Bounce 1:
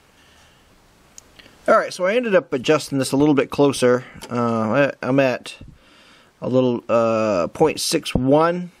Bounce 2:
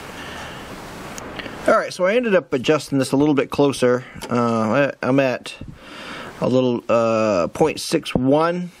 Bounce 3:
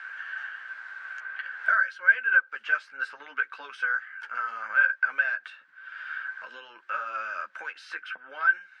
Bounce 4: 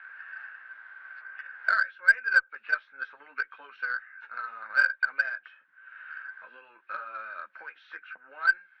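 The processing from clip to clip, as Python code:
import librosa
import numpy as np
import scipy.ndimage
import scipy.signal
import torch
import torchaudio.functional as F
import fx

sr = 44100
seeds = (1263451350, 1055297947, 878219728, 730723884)

y1 = fx.band_squash(x, sr, depth_pct=70)
y2 = fx.ladder_bandpass(y1, sr, hz=1600.0, resonance_pct=90)
y2 = fx.chorus_voices(y2, sr, voices=6, hz=1.2, base_ms=12, depth_ms=3.0, mix_pct=35)
y2 = F.gain(torch.from_numpy(y2), 2.0).numpy()
y3 = fx.freq_compress(y2, sr, knee_hz=2200.0, ratio=1.5)
y3 = fx.cheby_harmonics(y3, sr, harmonics=(4, 7), levels_db=(-45, -23), full_scale_db=-7.5)
y3 = scipy.signal.sosfilt(scipy.signal.bessel(2, 3800.0, 'lowpass', norm='mag', fs=sr, output='sos'), y3)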